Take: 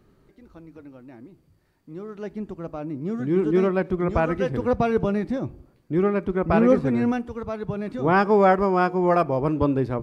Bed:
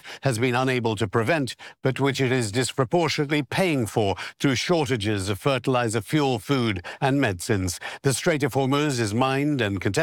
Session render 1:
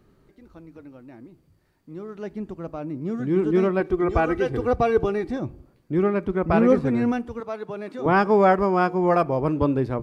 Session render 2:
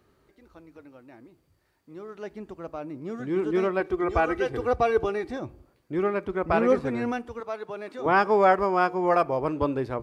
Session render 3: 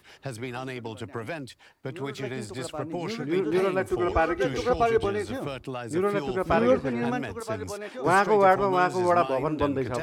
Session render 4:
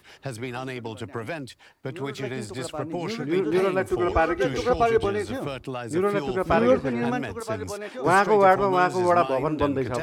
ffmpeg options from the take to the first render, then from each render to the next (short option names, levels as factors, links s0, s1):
-filter_complex "[0:a]asettb=1/sr,asplit=3[s0][s1][s2];[s0]atrim=end=3.804[s3];[s1]atrim=start=3.8:end=5.4,asetpts=PTS-STARTPTS,afade=t=in:d=0.004:c=qsin,afade=t=out:st=1.596:d=0.004:c=qsin,aecho=1:1:2.6:0.59,atrim=end_sample=70560[s4];[s2]atrim=start=5.396[s5];[s3][s4]acrossfade=d=0.004:c1=hsin:c2=qsin[s6];[s6][s5]acrossfade=d=0.004:c1=qsin:c2=hsin,asettb=1/sr,asplit=3[s7][s8][s9];[s7]atrim=end=7.404[s10];[s8]atrim=start=7.4:end=8.06,asetpts=PTS-STARTPTS,afade=t=in:d=0.004:c=qsin,afade=t=out:st=0.656:d=0.004:c=qsin,highpass=310[s11];[s9]atrim=start=8.056[s12];[s10][s11]acrossfade=d=0.004:c1=hsin:c2=qsin[s13];[s13][s12]acrossfade=d=0.004:c1=qsin:c2=hsin"
-af "highpass=56,equalizer=f=170:w=0.71:g=-10"
-filter_complex "[1:a]volume=0.237[s0];[0:a][s0]amix=inputs=2:normalize=0"
-af "volume=1.26"